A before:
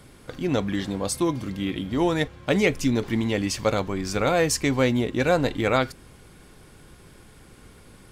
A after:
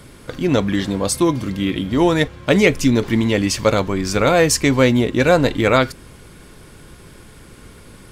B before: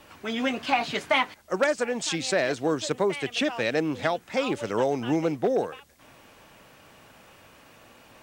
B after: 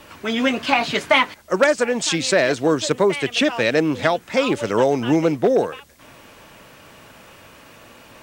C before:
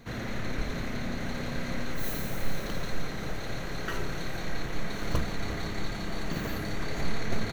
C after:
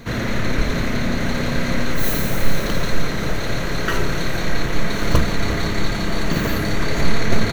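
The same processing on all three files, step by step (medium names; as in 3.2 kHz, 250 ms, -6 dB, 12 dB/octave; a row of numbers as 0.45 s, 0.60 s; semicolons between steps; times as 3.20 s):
band-stop 770 Hz, Q 12; peak normalisation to -1.5 dBFS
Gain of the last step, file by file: +7.5 dB, +7.5 dB, +12.5 dB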